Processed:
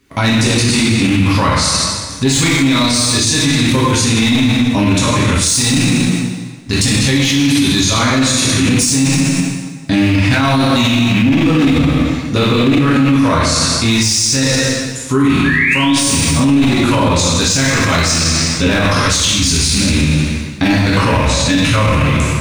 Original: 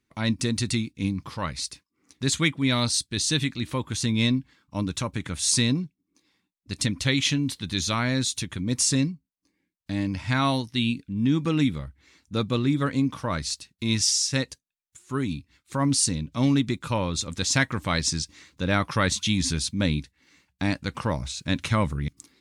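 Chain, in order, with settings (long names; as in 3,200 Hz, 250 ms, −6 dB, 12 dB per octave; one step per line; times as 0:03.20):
loose part that buzzes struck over −28 dBFS, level −24 dBFS
0:18.75–0:19.89: compressor whose output falls as the input rises −27 dBFS, ratio −0.5
hard clipping −18 dBFS, distortion −15 dB
0:15.44–0:15.96: sound drawn into the spectrogram rise 1,600–4,000 Hz −30 dBFS
0:15.16–0:15.90: flutter between parallel walls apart 5.5 metres, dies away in 0.44 s
dense smooth reverb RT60 1.4 s, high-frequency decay 0.85×, DRR −7 dB
boost into a limiter +21 dB
level −3.5 dB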